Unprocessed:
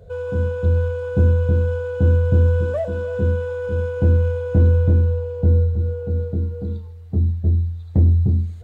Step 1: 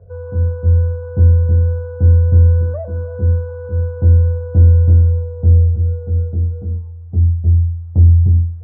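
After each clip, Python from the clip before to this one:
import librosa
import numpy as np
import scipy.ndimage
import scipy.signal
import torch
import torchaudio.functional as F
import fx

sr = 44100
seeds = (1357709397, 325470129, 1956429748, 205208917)

y = scipy.signal.sosfilt(scipy.signal.butter(4, 1400.0, 'lowpass', fs=sr, output='sos'), x)
y = fx.peak_eq(y, sr, hz=90.0, db=13.5, octaves=0.32)
y = F.gain(torch.from_numpy(y), -4.0).numpy()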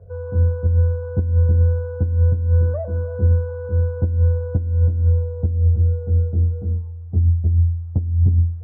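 y = fx.over_compress(x, sr, threshold_db=-11.0, ratio=-0.5)
y = F.gain(torch.from_numpy(y), -3.0).numpy()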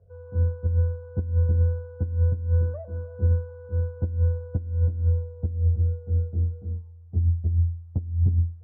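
y = fx.upward_expand(x, sr, threshold_db=-29.0, expansion=1.5)
y = F.gain(torch.from_numpy(y), -5.0).numpy()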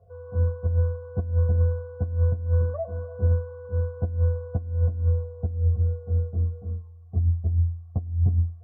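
y = fx.notch_comb(x, sr, f0_hz=310.0)
y = fx.small_body(y, sr, hz=(700.0, 1100.0), ring_ms=30, db=16)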